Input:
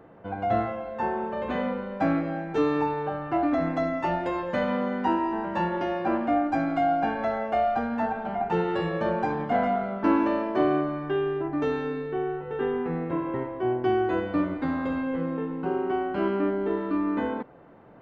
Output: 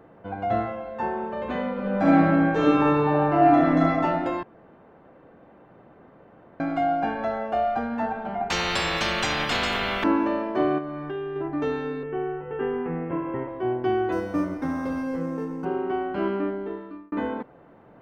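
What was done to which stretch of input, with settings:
1.72–3.90 s: reverb throw, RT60 1.7 s, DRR -6 dB
4.43–6.60 s: room tone
7.20–7.65 s: band-stop 2.1 kHz
8.50–10.04 s: spectrum-flattening compressor 10:1
10.78–11.36 s: compression 2.5:1, threshold -30 dBFS
12.03–13.48 s: steep low-pass 3.2 kHz 96 dB/octave
14.12–15.65 s: decimation joined by straight lines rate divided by 6×
16.31–17.12 s: fade out

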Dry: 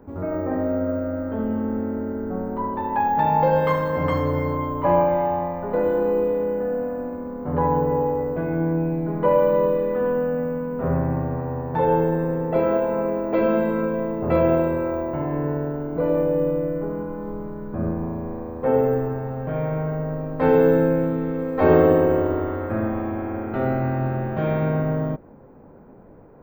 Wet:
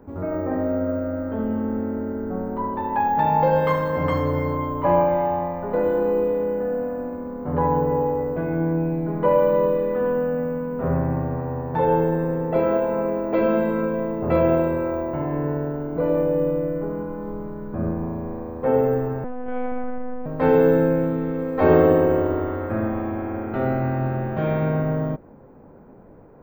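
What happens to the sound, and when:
19.24–20.26 s: monotone LPC vocoder at 8 kHz 250 Hz

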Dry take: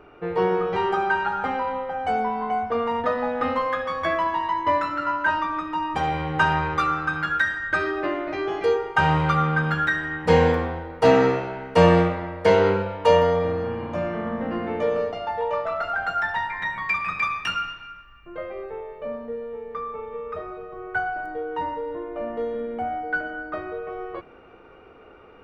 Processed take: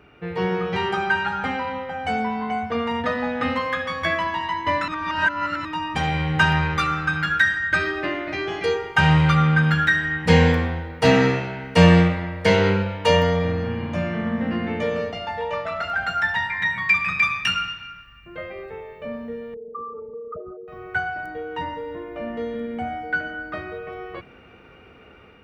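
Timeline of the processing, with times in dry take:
4.88–5.65 s: reverse
19.54–20.68 s: resonances exaggerated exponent 3
whole clip: high-pass 52 Hz; high-order bell 640 Hz -9 dB 2.5 oct; level rider gain up to 3.5 dB; trim +3.5 dB

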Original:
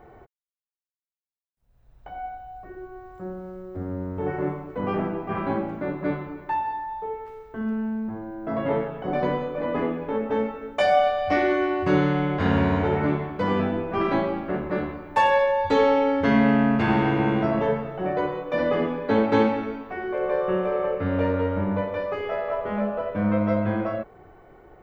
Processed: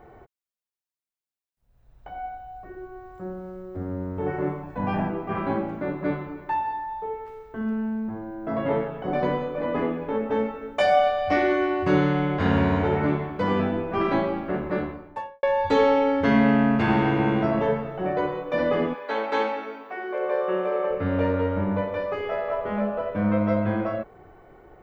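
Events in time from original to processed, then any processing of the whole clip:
4.63–5.10 s: comb 1.2 ms, depth 69%
14.74–15.43 s: studio fade out
18.93–20.89 s: high-pass 750 Hz -> 240 Hz

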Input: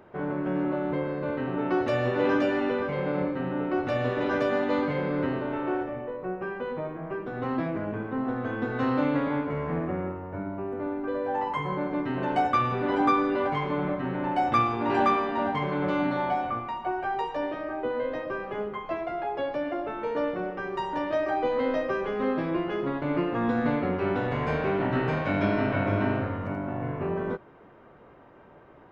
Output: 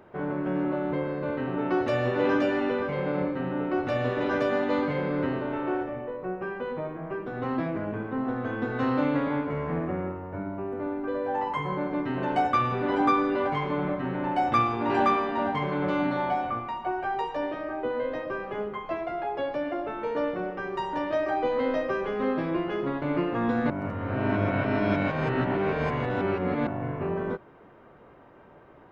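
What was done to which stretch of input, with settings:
23.70–26.67 s: reverse

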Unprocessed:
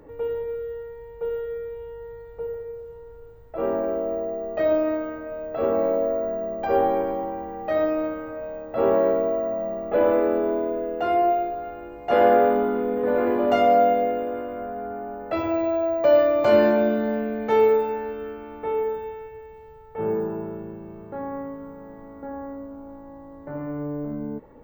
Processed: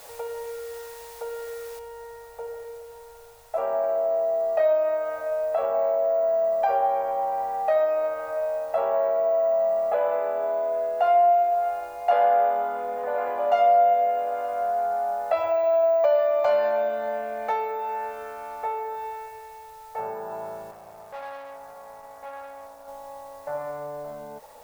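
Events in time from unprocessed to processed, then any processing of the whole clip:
1.79 s: noise floor step -50 dB -60 dB
20.71–22.88 s: valve stage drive 38 dB, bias 0.7
whole clip: compression 2.5:1, threshold -29 dBFS; resonant low shelf 460 Hz -13.5 dB, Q 3; band-stop 3.1 kHz, Q 27; trim +2.5 dB

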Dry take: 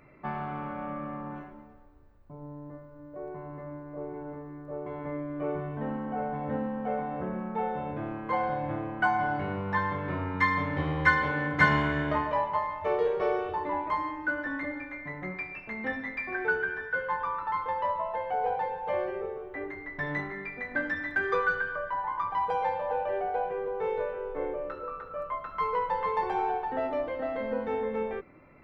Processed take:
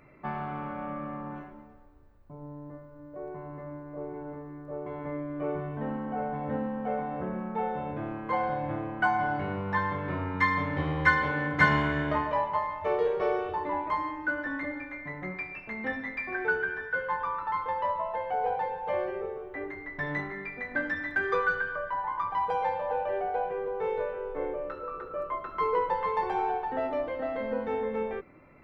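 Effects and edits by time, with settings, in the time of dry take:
24.94–25.94 s: peaking EQ 360 Hz +14 dB 0.52 oct

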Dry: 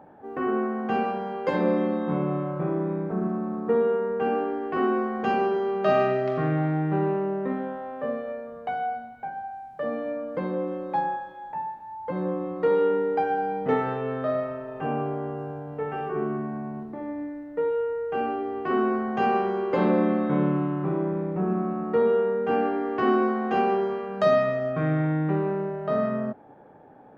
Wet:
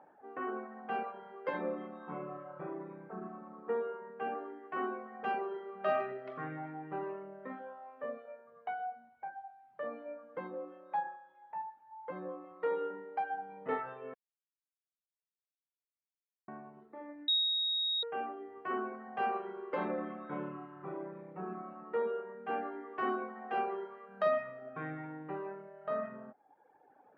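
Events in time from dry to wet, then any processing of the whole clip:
14.14–16.48 s: mute
17.28–18.03 s: bleep 3.77 kHz -11 dBFS
whole clip: high-pass 860 Hz 6 dB/octave; reverb removal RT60 1.2 s; low-pass 2.3 kHz 12 dB/octave; trim -4.5 dB

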